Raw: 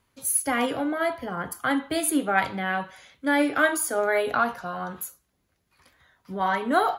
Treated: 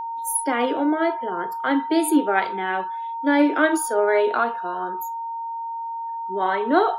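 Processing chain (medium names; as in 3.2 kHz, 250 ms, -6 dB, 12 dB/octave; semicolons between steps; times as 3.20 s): resonant high-pass 340 Hz, resonance Q 3.4; spectral noise reduction 21 dB; whistle 920 Hz -27 dBFS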